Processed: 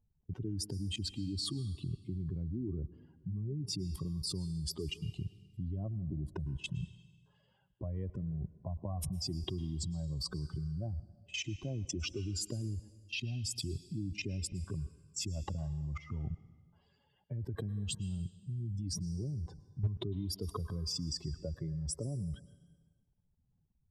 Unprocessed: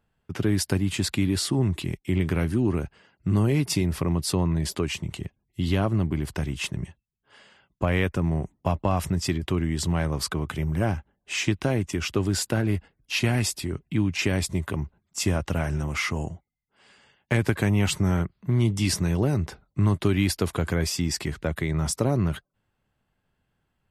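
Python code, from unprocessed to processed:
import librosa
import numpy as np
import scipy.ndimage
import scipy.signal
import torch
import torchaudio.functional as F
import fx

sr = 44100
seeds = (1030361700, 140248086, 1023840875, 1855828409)

y = fx.spec_expand(x, sr, power=2.3)
y = fx.band_shelf(y, sr, hz=1900.0, db=-13.0, octaves=1.2)
y = fx.level_steps(y, sr, step_db=19)
y = fx.rev_plate(y, sr, seeds[0], rt60_s=1.4, hf_ratio=0.95, predelay_ms=95, drr_db=16.0)
y = F.gain(torch.from_numpy(y), 1.0).numpy()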